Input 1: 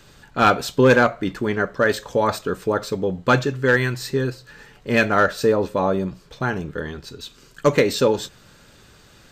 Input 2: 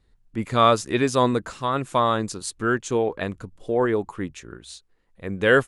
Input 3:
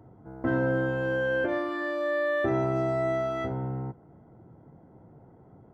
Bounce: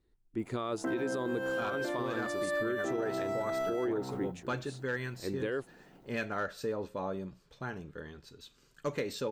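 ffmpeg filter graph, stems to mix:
-filter_complex "[0:a]adelay=1200,volume=-16dB[a];[1:a]equalizer=f=350:w=2:g=11.5,volume=-11.5dB[b];[2:a]highpass=f=170:w=0.5412,highpass=f=170:w=1.3066,aemphasis=mode=production:type=75fm,adelay=400,volume=-3dB[c];[a][b][c]amix=inputs=3:normalize=0,alimiter=level_in=1dB:limit=-24dB:level=0:latency=1:release=111,volume=-1dB"

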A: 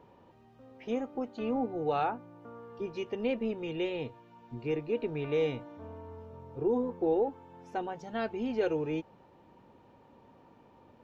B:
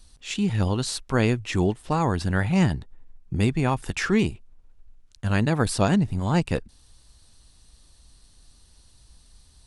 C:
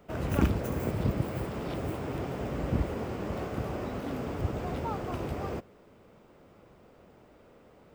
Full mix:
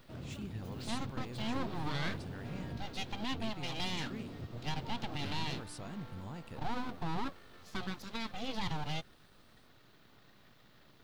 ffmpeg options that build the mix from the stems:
-filter_complex "[0:a]aemphasis=mode=production:type=bsi,bandreject=f=50:t=h:w=6,bandreject=f=100:t=h:w=6,bandreject=f=150:t=h:w=6,bandreject=f=200:t=h:w=6,bandreject=f=250:t=h:w=6,aeval=exprs='abs(val(0))':c=same,volume=-2dB[a];[1:a]alimiter=limit=-16.5dB:level=0:latency=1:release=108,volume=-19dB[b];[2:a]alimiter=limit=-23.5dB:level=0:latency=1:release=386,volume=-17dB,asplit=3[c][d][e];[c]atrim=end=3.26,asetpts=PTS-STARTPTS,afade=t=out:st=3.256:d=0.004:c=hsin[f];[d]atrim=start=3.26:end=3.76,asetpts=PTS-STARTPTS,volume=0[g];[e]atrim=start=3.76,asetpts=PTS-STARTPTS,afade=t=in:d=0.004:c=hsin[h];[f][g][h]concat=n=3:v=0:a=1[i];[a][i]amix=inputs=2:normalize=0,equalizer=f=125:t=o:w=1:g=9,equalizer=f=250:t=o:w=1:g=6,equalizer=f=4k:t=o:w=1:g=11,alimiter=level_in=2dB:limit=-24dB:level=0:latency=1:release=53,volume=-2dB,volume=0dB[j];[b][j]amix=inputs=2:normalize=0"

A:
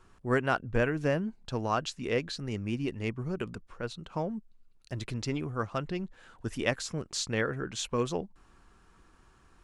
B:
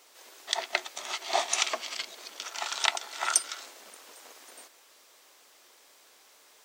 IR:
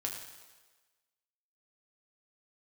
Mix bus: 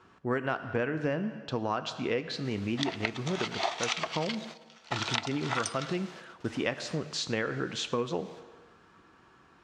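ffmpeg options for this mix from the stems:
-filter_complex "[0:a]volume=2dB,asplit=3[a][b][c];[b]volume=-7dB[d];[1:a]adelay=2300,volume=2.5dB,asplit=2[e][f];[f]volume=-20.5dB[g];[c]apad=whole_len=394303[h];[e][h]sidechaingate=range=-33dB:threshold=-49dB:ratio=16:detection=peak[i];[2:a]atrim=start_sample=2205[j];[d][g]amix=inputs=2:normalize=0[k];[k][j]afir=irnorm=-1:irlink=0[l];[a][i][l]amix=inputs=3:normalize=0,highpass=140,lowpass=4.4k,acompressor=threshold=-27dB:ratio=5"

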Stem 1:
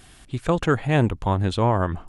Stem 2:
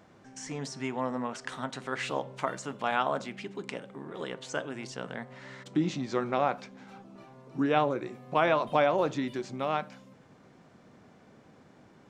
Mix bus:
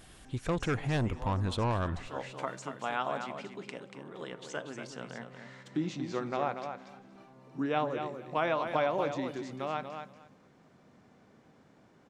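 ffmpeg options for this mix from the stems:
-filter_complex "[0:a]asoftclip=type=tanh:threshold=-18.5dB,volume=-6dB,asplit=3[a][b][c];[b]volume=-23.5dB[d];[1:a]volume=-5dB,asplit=2[e][f];[f]volume=-7.5dB[g];[c]apad=whole_len=533456[h];[e][h]sidechaincompress=threshold=-47dB:ratio=8:attack=16:release=224[i];[d][g]amix=inputs=2:normalize=0,aecho=0:1:236|472|708:1|0.16|0.0256[j];[a][i][j]amix=inputs=3:normalize=0"

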